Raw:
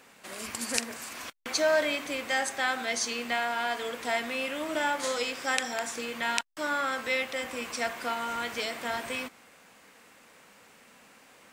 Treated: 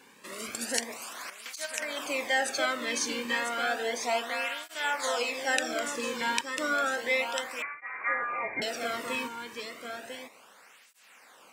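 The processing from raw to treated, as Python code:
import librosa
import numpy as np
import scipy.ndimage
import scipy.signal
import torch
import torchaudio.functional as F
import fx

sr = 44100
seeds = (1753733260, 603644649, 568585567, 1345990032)

y = fx.over_compress(x, sr, threshold_db=-32.0, ratio=-1.0, at=(1.65, 2.26), fade=0.02)
y = y + 10.0 ** (-6.5 / 20.0) * np.pad(y, (int(997 * sr / 1000.0), 0))[:len(y)]
y = fx.freq_invert(y, sr, carrier_hz=2600, at=(7.62, 8.62))
y = fx.flanger_cancel(y, sr, hz=0.32, depth_ms=1.6)
y = y * librosa.db_to_amplitude(2.5)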